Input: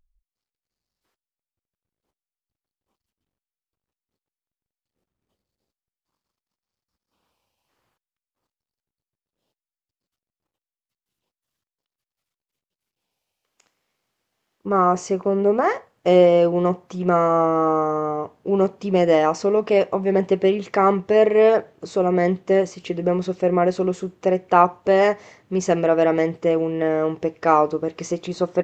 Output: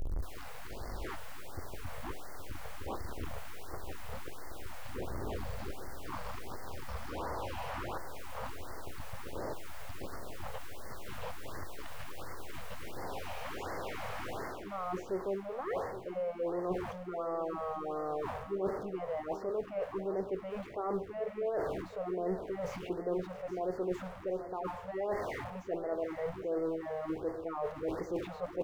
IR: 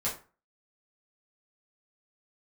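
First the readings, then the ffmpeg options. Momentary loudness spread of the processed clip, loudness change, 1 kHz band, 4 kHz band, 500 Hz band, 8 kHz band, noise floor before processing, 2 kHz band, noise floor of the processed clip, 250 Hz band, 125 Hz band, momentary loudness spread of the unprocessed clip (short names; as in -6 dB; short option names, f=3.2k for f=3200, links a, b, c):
11 LU, -20.0 dB, -17.0 dB, -12.0 dB, -17.0 dB, n/a, under -85 dBFS, -13.5 dB, -46 dBFS, -17.0 dB, -14.5 dB, 9 LU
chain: -filter_complex "[0:a]aeval=exprs='val(0)+0.5*0.0708*sgn(val(0))':c=same,acrossover=split=2600[a][b];[b]acompressor=threshold=-45dB:ratio=4:attack=1:release=60[c];[a][c]amix=inputs=2:normalize=0,equalizer=f=180:w=1.2:g=-11,areverse,acompressor=threshold=-30dB:ratio=12,areverse,tiltshelf=f=1.3k:g=5,aecho=1:1:823|1646|2469|3292:0.266|0.109|0.0447|0.0183,asplit=2[d][e];[1:a]atrim=start_sample=2205,asetrate=38808,aresample=44100[f];[e][f]afir=irnorm=-1:irlink=0,volume=-20dB[g];[d][g]amix=inputs=2:normalize=0,afftfilt=real='re*(1-between(b*sr/1024,290*pow(3100/290,0.5+0.5*sin(2*PI*1.4*pts/sr))/1.41,290*pow(3100/290,0.5+0.5*sin(2*PI*1.4*pts/sr))*1.41))':imag='im*(1-between(b*sr/1024,290*pow(3100/290,0.5+0.5*sin(2*PI*1.4*pts/sr))/1.41,290*pow(3100/290,0.5+0.5*sin(2*PI*1.4*pts/sr))*1.41))':win_size=1024:overlap=0.75,volume=-6.5dB"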